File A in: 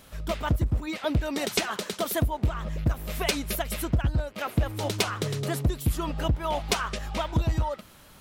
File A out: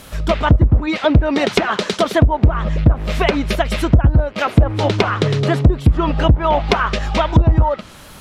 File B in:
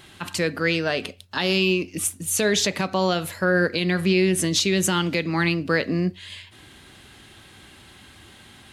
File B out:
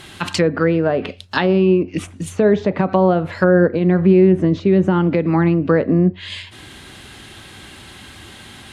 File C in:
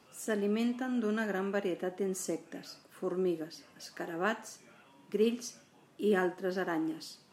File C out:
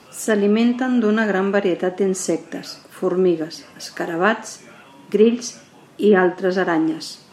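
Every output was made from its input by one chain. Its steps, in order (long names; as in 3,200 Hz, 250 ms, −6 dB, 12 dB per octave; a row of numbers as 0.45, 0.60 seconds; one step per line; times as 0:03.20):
treble cut that deepens with the level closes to 870 Hz, closed at −19.5 dBFS
normalise the peak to −1.5 dBFS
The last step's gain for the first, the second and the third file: +13.0, +9.0, +15.0 decibels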